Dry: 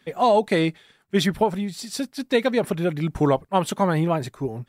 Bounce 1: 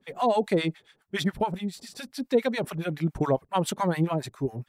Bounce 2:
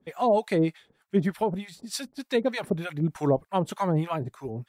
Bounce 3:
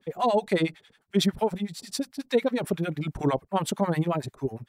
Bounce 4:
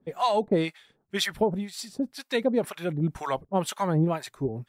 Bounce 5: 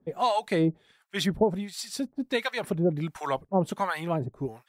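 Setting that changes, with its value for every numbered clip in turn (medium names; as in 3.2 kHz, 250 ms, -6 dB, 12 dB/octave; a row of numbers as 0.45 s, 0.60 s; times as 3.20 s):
harmonic tremolo, rate: 7.2 Hz, 3.3 Hz, 11 Hz, 2 Hz, 1.4 Hz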